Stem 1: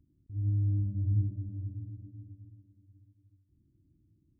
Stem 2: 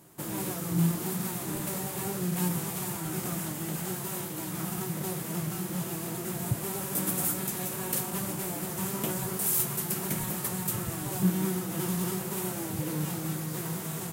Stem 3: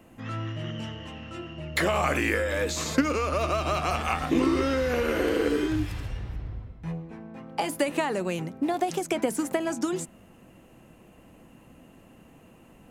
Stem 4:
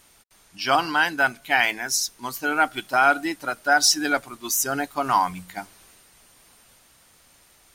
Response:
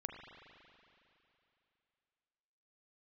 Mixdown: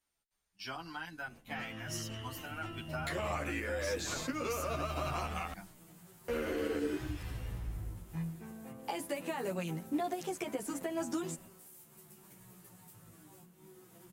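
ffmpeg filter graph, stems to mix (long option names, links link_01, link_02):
-filter_complex "[0:a]asplit=2[link_01][link_02];[link_02]afreqshift=1.1[link_03];[link_01][link_03]amix=inputs=2:normalize=1,adelay=2200,volume=1dB[link_04];[1:a]adelay=2200,volume=-14dB[link_05];[2:a]adelay=1300,volume=-3.5dB,asplit=3[link_06][link_07][link_08];[link_06]atrim=end=5.53,asetpts=PTS-STARTPTS,afade=type=out:start_time=5.526:duration=0.004:curve=hsin[link_09];[link_07]atrim=start=5.53:end=6.28,asetpts=PTS-STARTPTS,volume=0[link_10];[link_08]atrim=start=6.28,asetpts=PTS-STARTPTS,afade=type=in:duration=0.004:curve=hsin[link_11];[link_09][link_10][link_11]concat=n=3:v=0:a=1[link_12];[3:a]asubboost=boost=7.5:cutoff=140,acrossover=split=250[link_13][link_14];[link_14]acompressor=threshold=-26dB:ratio=5[link_15];[link_13][link_15]amix=inputs=2:normalize=0,volume=-11dB[link_16];[link_12][link_16]amix=inputs=2:normalize=0,agate=range=-15dB:threshold=-51dB:ratio=16:detection=peak,alimiter=limit=-23dB:level=0:latency=1:release=234,volume=0dB[link_17];[link_04][link_05]amix=inputs=2:normalize=0,flanger=delay=16.5:depth=2.4:speed=1.2,acompressor=threshold=-51dB:ratio=5,volume=0dB[link_18];[link_17][link_18]amix=inputs=2:normalize=0,asplit=2[link_19][link_20];[link_20]adelay=11.2,afreqshift=-0.58[link_21];[link_19][link_21]amix=inputs=2:normalize=1"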